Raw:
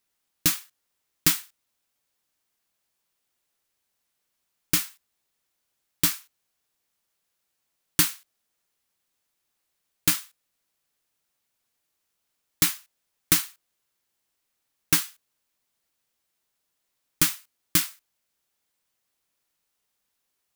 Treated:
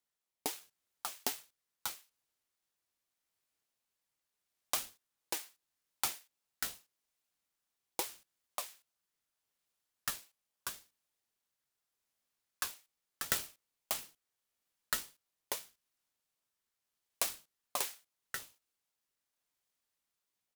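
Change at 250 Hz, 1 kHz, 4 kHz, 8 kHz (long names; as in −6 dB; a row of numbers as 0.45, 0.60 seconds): −20.0, −3.0, −12.0, −12.0 decibels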